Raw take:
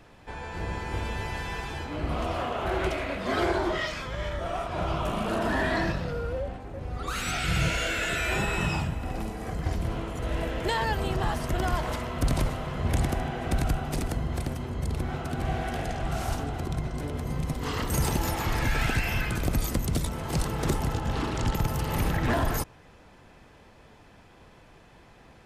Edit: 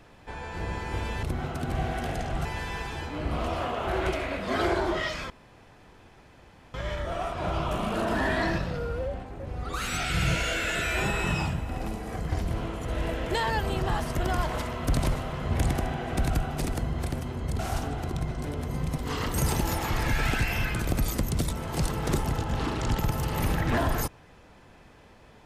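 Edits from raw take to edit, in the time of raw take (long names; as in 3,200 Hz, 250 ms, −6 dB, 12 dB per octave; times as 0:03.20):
0:04.08: splice in room tone 1.44 s
0:14.93–0:16.15: move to 0:01.23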